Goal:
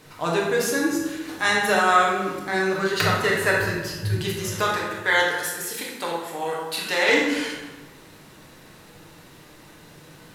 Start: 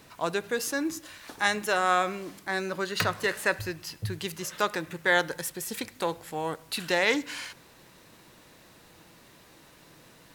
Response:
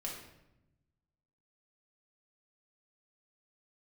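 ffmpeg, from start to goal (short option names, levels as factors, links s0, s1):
-filter_complex "[0:a]asettb=1/sr,asplit=3[s0][s1][s2];[s0]atrim=end=4.624[s3];[s1]atrim=start=4.62:end=7.09,asetpts=PTS-STARTPTS,afade=t=in:d=0.004:c=qsin,afade=t=out:st=2.466:d=0.004:c=qsin,highpass=f=630:p=1[s4];[s2]atrim=start=7.086[s5];[s3][s4]acrossfade=d=0.004:c1=hsin:c2=qsin[s6];[s6][s5]acrossfade=d=0.004:c1=qsin:c2=hsin[s7];[1:a]atrim=start_sample=2205,asetrate=29547,aresample=44100[s8];[s7][s8]afir=irnorm=-1:irlink=0,volume=1.58"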